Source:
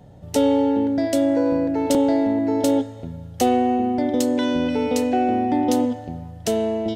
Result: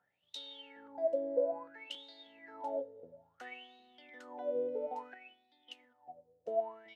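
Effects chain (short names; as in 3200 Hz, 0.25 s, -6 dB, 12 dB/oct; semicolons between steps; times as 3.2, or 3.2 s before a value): wah 0.59 Hz 470–3900 Hz, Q 17; 5.14–6.51 upward expander 1.5:1, over -59 dBFS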